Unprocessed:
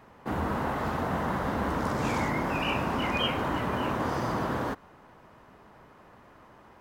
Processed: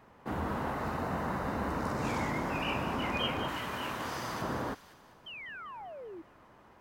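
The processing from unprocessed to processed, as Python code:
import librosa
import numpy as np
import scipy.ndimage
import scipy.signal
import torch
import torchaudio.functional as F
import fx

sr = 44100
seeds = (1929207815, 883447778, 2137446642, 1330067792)

p1 = fx.notch(x, sr, hz=3300.0, q=8.3, at=(0.71, 2.07))
p2 = fx.tilt_shelf(p1, sr, db=-7.0, hz=1400.0, at=(3.48, 4.42))
p3 = fx.spec_paint(p2, sr, seeds[0], shape='fall', start_s=5.26, length_s=0.96, low_hz=310.0, high_hz=3200.0, level_db=-40.0)
p4 = p3 + fx.echo_wet_highpass(p3, sr, ms=196, feedback_pct=47, hz=2900.0, wet_db=-8.0, dry=0)
y = p4 * 10.0 ** (-4.5 / 20.0)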